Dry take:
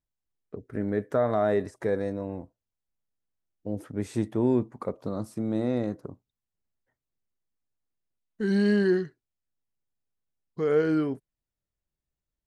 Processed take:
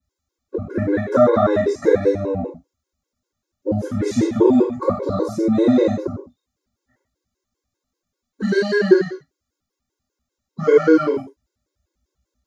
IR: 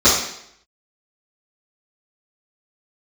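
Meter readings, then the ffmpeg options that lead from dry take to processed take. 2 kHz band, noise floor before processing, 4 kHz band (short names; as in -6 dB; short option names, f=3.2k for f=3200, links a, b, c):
+9.5 dB, under -85 dBFS, +10.0 dB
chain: -filter_complex "[0:a]acrossover=split=420|1100[a][b][c];[a]acompressor=threshold=-36dB:ratio=4[d];[b]acompressor=threshold=-33dB:ratio=4[e];[c]acompressor=threshold=-39dB:ratio=4[f];[d][e][f]amix=inputs=3:normalize=0[g];[1:a]atrim=start_sample=2205,afade=t=out:st=0.21:d=0.01,atrim=end_sample=9702[h];[g][h]afir=irnorm=-1:irlink=0,afftfilt=real='re*gt(sin(2*PI*5.1*pts/sr)*(1-2*mod(floor(b*sr/1024/280),2)),0)':imag='im*gt(sin(2*PI*5.1*pts/sr)*(1-2*mod(floor(b*sr/1024/280),2)),0)':win_size=1024:overlap=0.75,volume=-7dB"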